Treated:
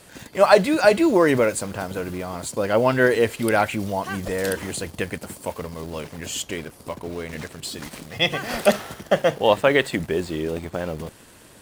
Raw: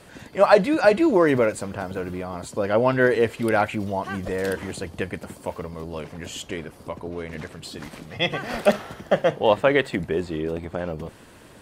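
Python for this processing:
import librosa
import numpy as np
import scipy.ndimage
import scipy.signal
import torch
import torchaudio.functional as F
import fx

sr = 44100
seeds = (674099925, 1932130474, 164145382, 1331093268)

p1 = fx.high_shelf(x, sr, hz=4400.0, db=10.0)
p2 = fx.quant_dither(p1, sr, seeds[0], bits=6, dither='none')
p3 = p1 + (p2 * 10.0 ** (-7.0 / 20.0))
y = p3 * 10.0 ** (-2.5 / 20.0)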